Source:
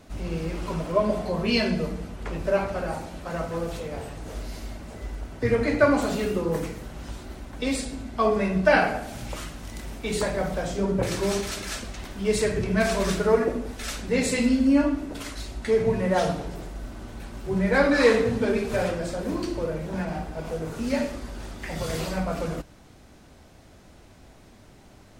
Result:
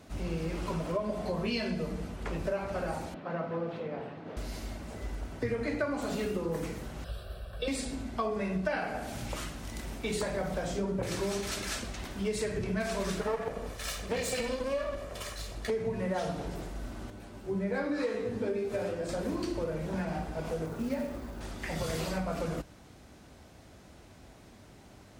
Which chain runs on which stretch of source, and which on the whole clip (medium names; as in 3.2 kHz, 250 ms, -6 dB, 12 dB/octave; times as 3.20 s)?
3.14–4.37 s: high-pass 140 Hz 24 dB/octave + distance through air 340 m
7.04–7.68 s: static phaser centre 1.4 kHz, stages 8 + comb 1.8 ms, depth 37%
13.21–15.70 s: comb filter that takes the minimum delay 1.7 ms + hum notches 60/120/180/240/300/360/420/480/540 Hz
17.10–19.09 s: peaking EQ 360 Hz +6 dB 1.7 oct + feedback comb 100 Hz, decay 0.23 s, mix 80%
20.66–21.41 s: treble shelf 2.2 kHz -12 dB + hum notches 50/100/150/200/250/300/350/400/450/500 Hz + companded quantiser 6-bit
whole clip: high-pass 42 Hz; compression 6:1, threshold -27 dBFS; trim -2 dB